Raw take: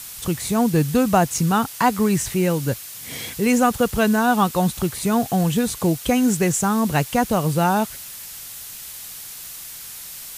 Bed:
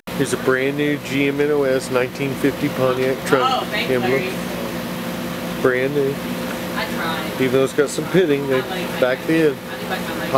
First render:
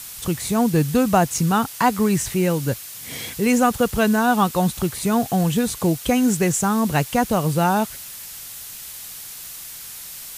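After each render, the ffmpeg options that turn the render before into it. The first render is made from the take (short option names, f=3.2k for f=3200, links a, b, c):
-af anull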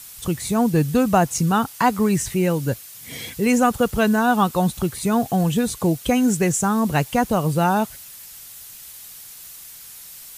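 -af "afftdn=nr=6:nf=-37"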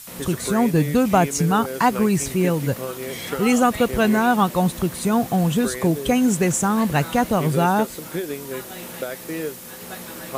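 -filter_complex "[1:a]volume=-12.5dB[a];[0:a][a]amix=inputs=2:normalize=0"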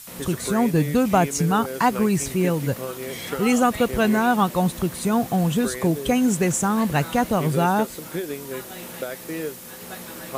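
-af "volume=-1.5dB"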